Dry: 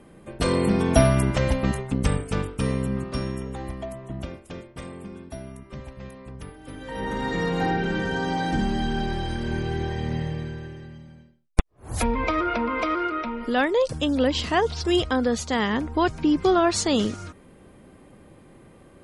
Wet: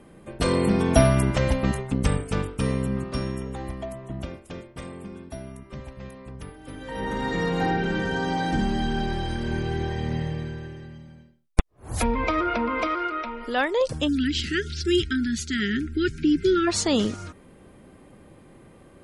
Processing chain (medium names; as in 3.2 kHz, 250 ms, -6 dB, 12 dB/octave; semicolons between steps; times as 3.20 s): 12.87–13.81 s: peaking EQ 140 Hz -11.5 dB 2 oct; 14.08–16.68 s: spectral selection erased 430–1300 Hz